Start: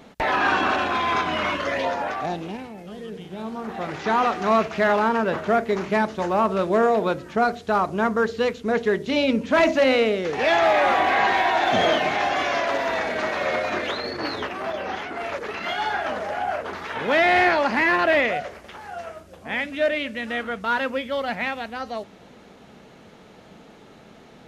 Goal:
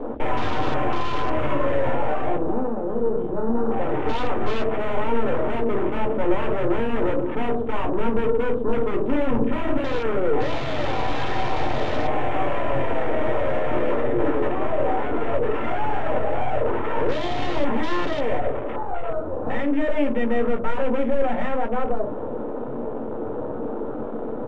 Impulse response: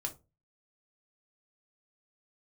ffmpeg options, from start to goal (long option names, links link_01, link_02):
-filter_complex "[0:a]aeval=exprs='val(0)+0.5*0.0188*sgn(val(0))':channel_layout=same,equalizer=frequency=125:width_type=o:width=1:gain=-5,equalizer=frequency=250:width_type=o:width=1:gain=5,equalizer=frequency=500:width_type=o:width=1:gain=9,equalizer=frequency=1000:width_type=o:width=1:gain=6,equalizer=frequency=2000:width_type=o:width=1:gain=4,acrossover=split=170|1100[link_01][link_02][link_03];[link_01]acrusher=bits=4:mode=log:mix=0:aa=0.000001[link_04];[link_04][link_02][link_03]amix=inputs=3:normalize=0,aeval=exprs='1.19*(cos(1*acos(clip(val(0)/1.19,-1,1)))-cos(1*PI/2))+0.0168*(cos(2*acos(clip(val(0)/1.19,-1,1)))-cos(2*PI/2))+0.0422*(cos(4*acos(clip(val(0)/1.19,-1,1)))-cos(4*PI/2))+0.335*(cos(5*acos(clip(val(0)/1.19,-1,1)))-cos(5*PI/2))+0.0075*(cos(6*acos(clip(val(0)/1.19,-1,1)))-cos(6*PI/2))':channel_layout=same,aresample=8000,aeval=exprs='0.398*(abs(mod(val(0)/0.398+3,4)-2)-1)':channel_layout=same,aresample=44100,aeval=exprs='(tanh(6.31*val(0)+0.5)-tanh(0.5))/6.31':channel_layout=same[link_05];[1:a]atrim=start_sample=2205[link_06];[link_05][link_06]afir=irnorm=-1:irlink=0,afwtdn=0.0562,tiltshelf=frequency=780:gain=6.5,volume=-7dB"